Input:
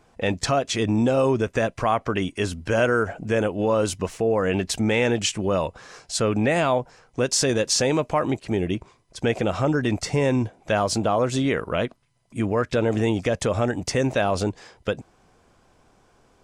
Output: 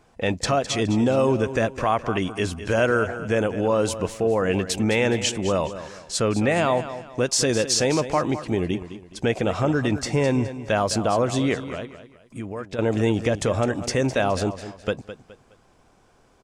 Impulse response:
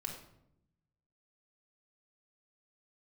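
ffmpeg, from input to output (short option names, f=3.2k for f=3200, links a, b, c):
-filter_complex "[0:a]asettb=1/sr,asplit=3[a][b][c];[a]atrim=end=11.544[d];[b]atrim=start=11.54:end=12.79,asetpts=PTS-STARTPTS,afade=t=in:d=0.004:c=qsin,afade=t=out:st=1.246:d=0.004:c=qsin,acompressor=threshold=-37dB:ratio=2[e];[c]atrim=start=12.786[f];[d][e]acrossfade=d=0.004:c1=hsin:c2=qsin[g];[g][f]acrossfade=d=0.004:c1=qsin:c2=hsin,aecho=1:1:209|418|627:0.237|0.0806|0.0274"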